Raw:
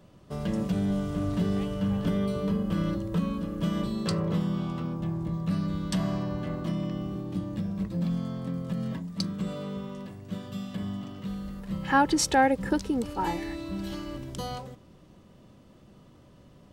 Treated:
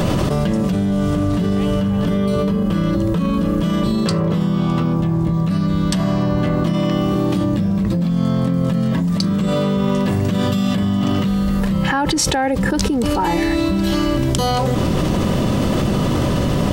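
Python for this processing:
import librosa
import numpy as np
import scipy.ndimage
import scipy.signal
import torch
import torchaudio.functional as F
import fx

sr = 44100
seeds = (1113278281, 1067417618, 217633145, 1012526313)

y = fx.low_shelf(x, sr, hz=290.0, db=-9.0, at=(6.73, 7.44))
y = fx.env_flatten(y, sr, amount_pct=100)
y = F.gain(torch.from_numpy(y), 1.0).numpy()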